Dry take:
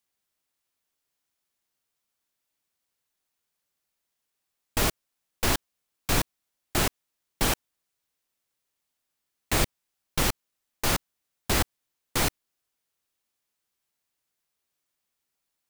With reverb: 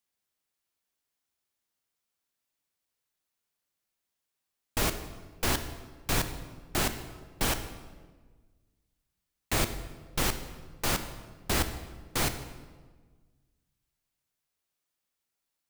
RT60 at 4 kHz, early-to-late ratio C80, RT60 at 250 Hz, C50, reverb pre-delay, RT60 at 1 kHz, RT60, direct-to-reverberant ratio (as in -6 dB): 1.0 s, 12.0 dB, 1.8 s, 10.5 dB, 22 ms, 1.3 s, 1.4 s, 9.0 dB